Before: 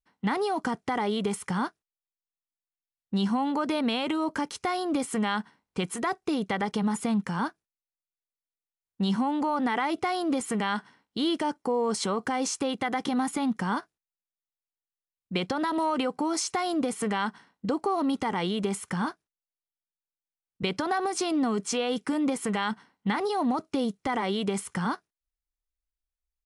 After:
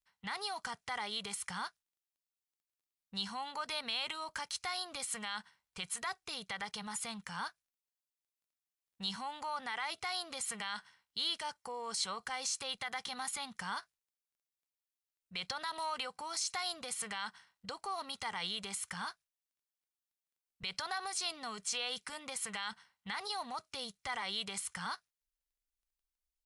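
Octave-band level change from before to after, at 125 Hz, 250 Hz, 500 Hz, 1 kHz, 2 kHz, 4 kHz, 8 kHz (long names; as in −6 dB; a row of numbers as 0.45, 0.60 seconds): −19.5, −24.5, −18.5, −11.0, −6.5, −1.5, −3.0 decibels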